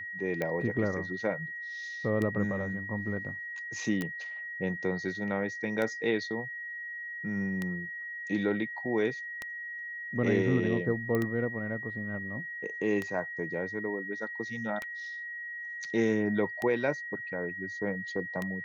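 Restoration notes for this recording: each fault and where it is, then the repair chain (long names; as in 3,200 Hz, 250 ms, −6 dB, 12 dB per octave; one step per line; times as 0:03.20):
scratch tick 33 1/3 rpm −19 dBFS
whistle 1,900 Hz −37 dBFS
0:04.01: click −21 dBFS
0:11.15: click −18 dBFS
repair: click removal
notch filter 1,900 Hz, Q 30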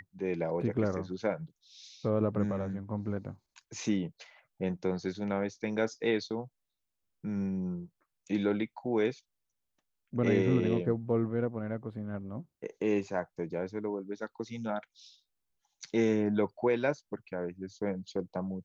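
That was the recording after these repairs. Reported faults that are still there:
none of them is left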